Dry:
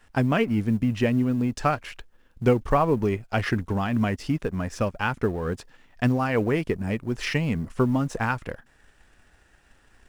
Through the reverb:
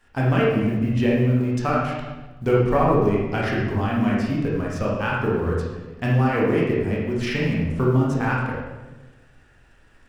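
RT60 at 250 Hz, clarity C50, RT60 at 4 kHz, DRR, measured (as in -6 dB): 1.5 s, -0.5 dB, 0.90 s, -5.0 dB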